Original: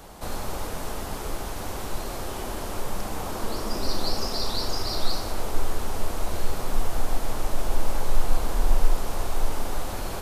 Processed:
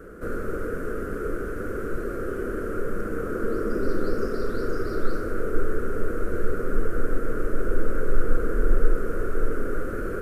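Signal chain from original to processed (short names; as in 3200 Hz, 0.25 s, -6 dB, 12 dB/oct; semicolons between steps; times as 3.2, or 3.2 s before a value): EQ curve 140 Hz 0 dB, 470 Hz +11 dB, 870 Hz -25 dB, 1400 Hz +11 dB, 2000 Hz -6 dB, 3800 Hz -23 dB, 9200 Hz -13 dB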